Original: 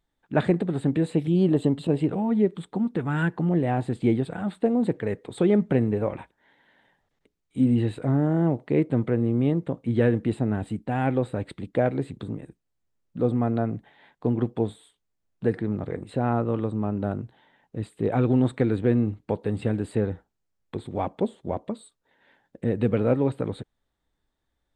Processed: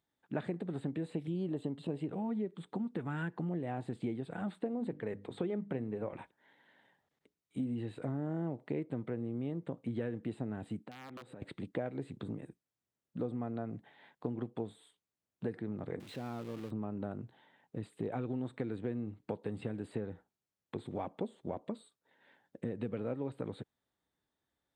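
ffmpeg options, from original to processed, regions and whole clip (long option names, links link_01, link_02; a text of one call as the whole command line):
ffmpeg -i in.wav -filter_complex "[0:a]asettb=1/sr,asplit=3[link_01][link_02][link_03];[link_01]atrim=end=4.594[link_04];[link_02]atrim=start=4.59:end=6.13,asetpts=PTS-STARTPTS,afade=type=in:duration=0.004:curve=qsin,afade=type=out:start_time=1.536:duration=0.004:curve=qsin,highshelf=frequency=5100:gain=-5.5,bandreject=frequency=50:width_type=h:width=6,bandreject=frequency=100:width_type=h:width=6,bandreject=frequency=150:width_type=h:width=6,bandreject=frequency=200:width_type=h:width=6,bandreject=frequency=250:width_type=h:width=6,bandreject=frequency=300:width_type=h:width=6[link_05];[link_03]atrim=start=6.126[link_06];[link_04][link_05]acrossfade=duration=0.004:curve1=hsin:curve2=qsin[link_07];[link_07][link_06]acrossfade=duration=0.004:curve1=qsin:curve2=hsin,asettb=1/sr,asplit=3[link_08][link_09][link_10];[link_08]atrim=end=10.794[link_11];[link_09]atrim=start=10.79:end=11.42,asetpts=PTS-STARTPTS,afade=type=in:duration=0.004:curve=qsin,afade=type=out:start_time=0.626:duration=0.004:curve=qsin,highpass=130,aeval=exprs='(mod(6.31*val(0)+1,2)-1)/6.31':channel_layout=same,acompressor=threshold=-39dB:ratio=16:attack=3.2:release=140:knee=1:detection=peak[link_12];[link_10]atrim=start=11.416[link_13];[link_11][link_12]acrossfade=duration=0.004:curve1=hsin:curve2=qsin[link_14];[link_14][link_13]acrossfade=duration=0.004:curve1=qsin:curve2=hsin,asettb=1/sr,asplit=3[link_15][link_16][link_17];[link_15]atrim=end=16.004[link_18];[link_16]atrim=start=16:end=16.71,asetpts=PTS-STARTPTS,afade=type=in:duration=0.004:curve=qsin,afade=type=out:start_time=0.706:duration=0.004:curve=qsin,aeval=exprs='val(0)+0.5*0.0316*sgn(val(0))':channel_layout=same,highpass=frequency=330:poles=1,equalizer=frequency=810:width=0.33:gain=-13[link_19];[link_17]atrim=start=16.706[link_20];[link_18][link_19]acrossfade=duration=0.004:curve1=hsin:curve2=qsin[link_21];[link_21][link_20]acrossfade=duration=0.004:curve1=qsin:curve2=hsin,acompressor=threshold=-29dB:ratio=5,highpass=110,acrossover=split=4000[link_22][link_23];[link_23]acompressor=threshold=-58dB:ratio=4:attack=1:release=60[link_24];[link_22][link_24]amix=inputs=2:normalize=0,volume=-5dB" out.wav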